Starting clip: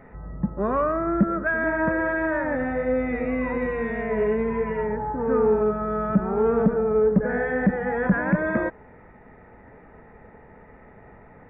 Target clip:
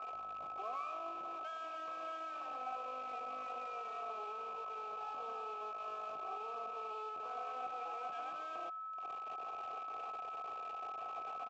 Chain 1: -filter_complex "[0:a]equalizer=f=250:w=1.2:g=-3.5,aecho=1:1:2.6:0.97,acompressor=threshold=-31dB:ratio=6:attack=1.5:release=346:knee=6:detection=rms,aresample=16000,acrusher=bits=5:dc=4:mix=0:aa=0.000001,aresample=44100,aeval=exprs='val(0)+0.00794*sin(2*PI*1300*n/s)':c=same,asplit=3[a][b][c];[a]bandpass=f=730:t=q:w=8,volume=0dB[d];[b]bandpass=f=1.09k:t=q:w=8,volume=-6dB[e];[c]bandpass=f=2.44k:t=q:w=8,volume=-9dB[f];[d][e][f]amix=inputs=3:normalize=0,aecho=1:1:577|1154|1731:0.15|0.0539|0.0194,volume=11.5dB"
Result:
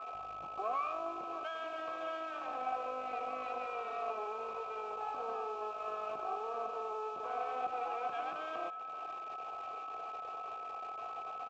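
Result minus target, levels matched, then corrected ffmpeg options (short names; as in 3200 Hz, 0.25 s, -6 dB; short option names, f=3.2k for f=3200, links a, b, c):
compressor: peak gain reduction -8 dB; echo-to-direct +6.5 dB
-filter_complex "[0:a]equalizer=f=250:w=1.2:g=-3.5,aecho=1:1:2.6:0.97,acompressor=threshold=-40.5dB:ratio=6:attack=1.5:release=346:knee=6:detection=rms,aresample=16000,acrusher=bits=5:dc=4:mix=0:aa=0.000001,aresample=44100,aeval=exprs='val(0)+0.00794*sin(2*PI*1300*n/s)':c=same,asplit=3[a][b][c];[a]bandpass=f=730:t=q:w=8,volume=0dB[d];[b]bandpass=f=1.09k:t=q:w=8,volume=-6dB[e];[c]bandpass=f=2.44k:t=q:w=8,volume=-9dB[f];[d][e][f]amix=inputs=3:normalize=0,aecho=1:1:577|1154:0.0708|0.0255,volume=11.5dB"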